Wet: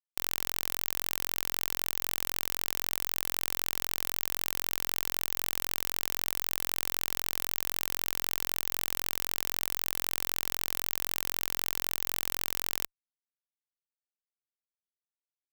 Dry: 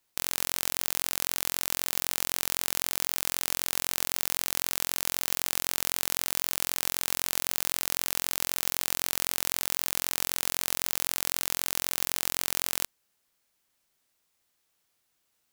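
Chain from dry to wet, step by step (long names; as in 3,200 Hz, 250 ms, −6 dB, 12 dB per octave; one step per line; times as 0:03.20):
fuzz pedal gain 32 dB, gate −32 dBFS
level +4 dB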